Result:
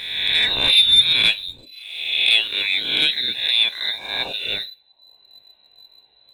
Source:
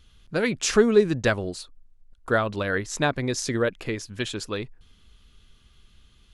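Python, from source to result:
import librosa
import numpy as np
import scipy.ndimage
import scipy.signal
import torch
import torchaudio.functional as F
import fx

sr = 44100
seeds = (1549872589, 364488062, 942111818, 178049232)

y = fx.spec_swells(x, sr, rise_s=1.27)
y = fx.notch(y, sr, hz=2700.0, q=5.8)
y = fx.freq_invert(y, sr, carrier_hz=4000)
y = fx.low_shelf(y, sr, hz=160.0, db=-11.5, at=(2.3, 4.46))
y = fx.echo_feedback(y, sr, ms=122, feedback_pct=35, wet_db=-19.5)
y = fx.dereverb_blind(y, sr, rt60_s=0.87)
y = fx.leveller(y, sr, passes=1)
y = fx.rev_gated(y, sr, seeds[0], gate_ms=90, shape='falling', drr_db=10.5)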